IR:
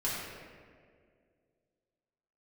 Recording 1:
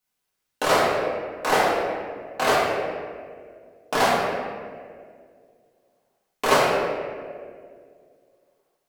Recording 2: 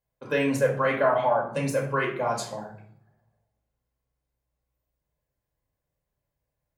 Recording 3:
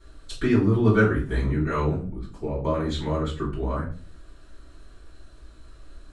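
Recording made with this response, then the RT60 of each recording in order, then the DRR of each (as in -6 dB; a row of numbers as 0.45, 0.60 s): 1; 2.1, 0.55, 0.45 s; -8.5, -2.5, -9.0 dB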